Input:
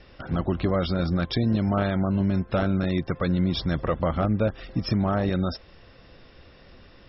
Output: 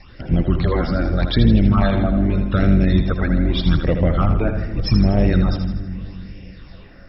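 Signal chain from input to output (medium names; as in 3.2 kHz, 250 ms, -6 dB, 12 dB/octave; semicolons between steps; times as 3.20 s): octave divider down 2 oct, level -3 dB; phase shifter stages 8, 0.82 Hz, lowest notch 120–1300 Hz; two-band feedback delay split 310 Hz, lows 275 ms, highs 80 ms, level -7 dB; trim +7.5 dB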